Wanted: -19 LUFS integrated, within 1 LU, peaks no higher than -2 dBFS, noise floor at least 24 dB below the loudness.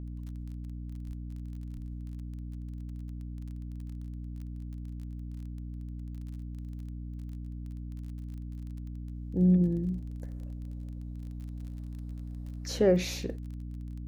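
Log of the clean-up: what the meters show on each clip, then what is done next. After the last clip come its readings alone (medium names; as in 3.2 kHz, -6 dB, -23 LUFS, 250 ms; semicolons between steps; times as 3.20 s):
tick rate 26 per s; hum 60 Hz; highest harmonic 300 Hz; hum level -36 dBFS; loudness -35.5 LUFS; peak level -13.5 dBFS; loudness target -19.0 LUFS
-> de-click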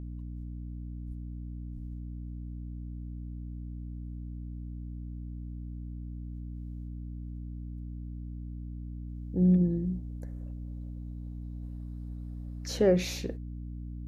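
tick rate 0 per s; hum 60 Hz; highest harmonic 300 Hz; hum level -36 dBFS
-> de-hum 60 Hz, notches 5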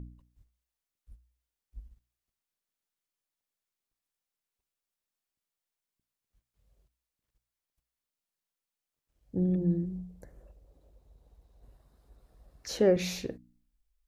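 hum not found; loudness -30.0 LUFS; peak level -13.5 dBFS; loudness target -19.0 LUFS
-> trim +11 dB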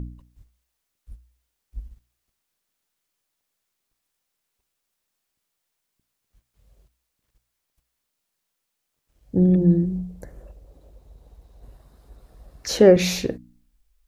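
loudness -19.0 LUFS; peak level -2.5 dBFS; noise floor -79 dBFS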